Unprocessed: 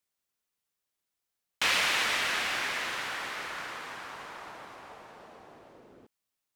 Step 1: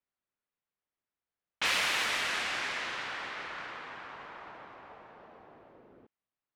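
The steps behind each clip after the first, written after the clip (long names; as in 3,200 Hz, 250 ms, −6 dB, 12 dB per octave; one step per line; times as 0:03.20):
low-pass that shuts in the quiet parts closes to 2,200 Hz, open at −24 dBFS
level −2.5 dB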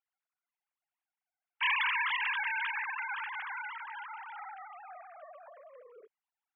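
three sine waves on the formant tracks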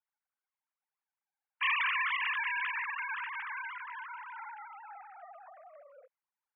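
low-pass that shuts in the quiet parts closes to 2,000 Hz
single-sideband voice off tune +80 Hz 430–2,900 Hz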